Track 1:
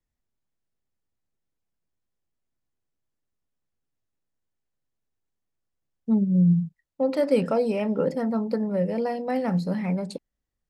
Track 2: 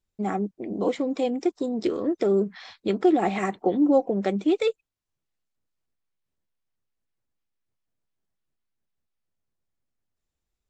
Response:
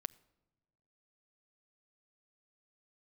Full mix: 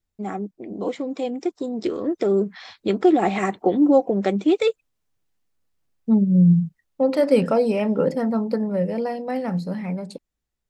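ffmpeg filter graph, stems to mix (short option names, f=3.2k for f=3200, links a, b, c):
-filter_complex "[0:a]volume=-1.5dB[a];[1:a]volume=-2dB[b];[a][b]amix=inputs=2:normalize=0,dynaudnorm=f=200:g=21:m=6dB"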